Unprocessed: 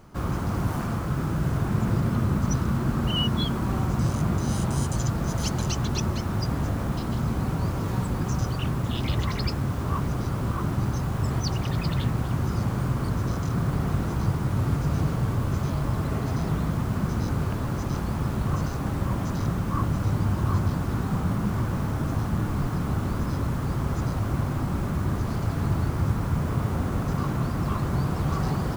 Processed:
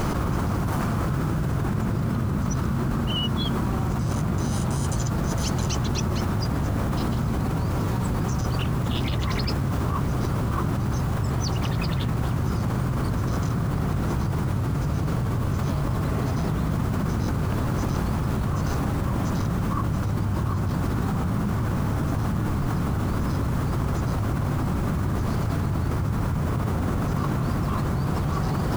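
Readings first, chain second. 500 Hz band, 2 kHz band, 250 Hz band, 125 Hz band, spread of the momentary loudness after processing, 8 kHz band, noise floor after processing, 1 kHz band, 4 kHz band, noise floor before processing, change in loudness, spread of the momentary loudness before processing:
+2.0 dB, +2.0 dB, +1.5 dB, +1.0 dB, 0 LU, +1.5 dB, −26 dBFS, +2.0 dB, +0.5 dB, −30 dBFS, +1.0 dB, 3 LU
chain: envelope flattener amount 100%
level −5 dB

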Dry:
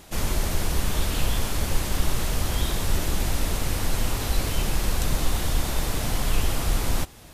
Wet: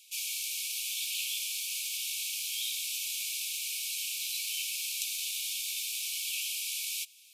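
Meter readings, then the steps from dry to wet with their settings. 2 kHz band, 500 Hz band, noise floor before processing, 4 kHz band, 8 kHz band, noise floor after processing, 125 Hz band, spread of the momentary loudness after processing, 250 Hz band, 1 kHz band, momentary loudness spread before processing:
−5.5 dB, below −40 dB, −43 dBFS, −0.5 dB, −0.5 dB, −54 dBFS, below −40 dB, 1 LU, below −40 dB, below −40 dB, 1 LU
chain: in parallel at −3.5 dB: dead-zone distortion −39 dBFS
on the sum: linear-phase brick-wall high-pass 2,200 Hz
level −4.5 dB

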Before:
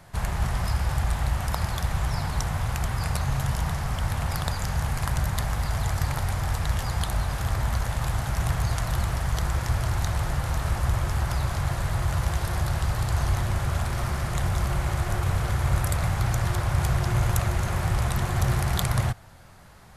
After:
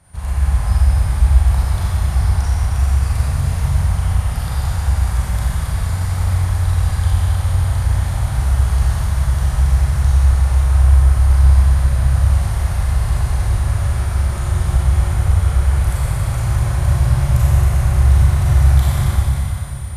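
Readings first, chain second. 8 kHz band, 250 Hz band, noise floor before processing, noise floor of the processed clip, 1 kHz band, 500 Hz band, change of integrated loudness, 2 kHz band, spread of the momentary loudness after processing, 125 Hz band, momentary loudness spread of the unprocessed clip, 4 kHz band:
+4.5 dB, +4.5 dB, −33 dBFS, −23 dBFS, +1.5 dB, +2.0 dB, +10.0 dB, +1.5 dB, 7 LU, +10.5 dB, 3 LU, +1.5 dB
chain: steady tone 9,300 Hz −54 dBFS
parametric band 66 Hz +12 dB 1.5 octaves
four-comb reverb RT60 3.6 s, combs from 30 ms, DRR −9 dB
level −8 dB

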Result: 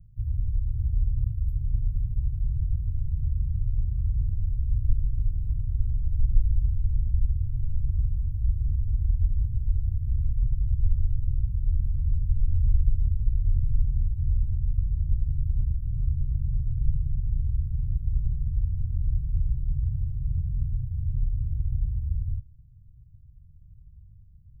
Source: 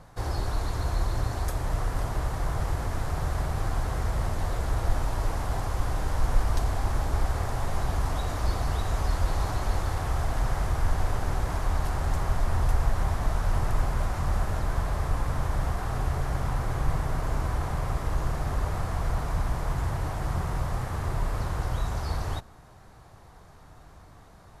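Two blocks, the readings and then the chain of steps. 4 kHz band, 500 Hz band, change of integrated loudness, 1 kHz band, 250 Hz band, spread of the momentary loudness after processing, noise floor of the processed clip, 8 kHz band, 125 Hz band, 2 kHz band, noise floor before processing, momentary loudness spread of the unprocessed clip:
below −40 dB, below −40 dB, +1.5 dB, below −40 dB, −8.0 dB, 3 LU, −51 dBFS, below −35 dB, +2.0 dB, below −40 dB, −51 dBFS, 2 LU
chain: inverse Chebyshev band-stop filter 680–6,200 Hz, stop band 80 dB
level +3 dB

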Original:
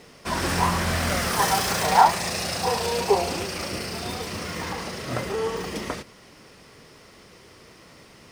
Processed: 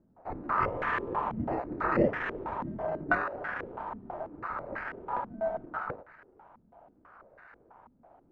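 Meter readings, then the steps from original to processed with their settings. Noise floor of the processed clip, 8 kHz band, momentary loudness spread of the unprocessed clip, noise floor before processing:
−65 dBFS, below −40 dB, 12 LU, −50 dBFS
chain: sample-and-hold swept by an LFO 16×, swing 60% 0.71 Hz
ring modulation 1,100 Hz
low-pass on a step sequencer 6.1 Hz 230–1,700 Hz
level −7.5 dB

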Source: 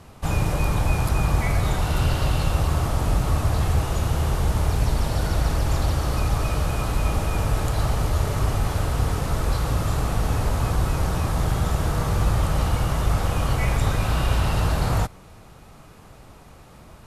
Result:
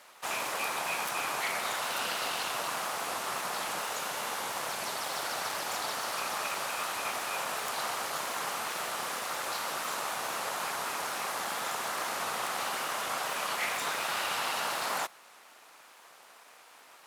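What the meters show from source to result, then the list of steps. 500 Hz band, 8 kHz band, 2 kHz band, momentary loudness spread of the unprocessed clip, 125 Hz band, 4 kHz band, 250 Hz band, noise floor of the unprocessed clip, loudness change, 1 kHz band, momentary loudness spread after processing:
−9.0 dB, −0.5 dB, 0.0 dB, 2 LU, −36.5 dB, 0.0 dB, −19.5 dB, −47 dBFS, −9.0 dB, −3.0 dB, 3 LU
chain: full-wave rectification
high-pass filter 800 Hz 12 dB per octave

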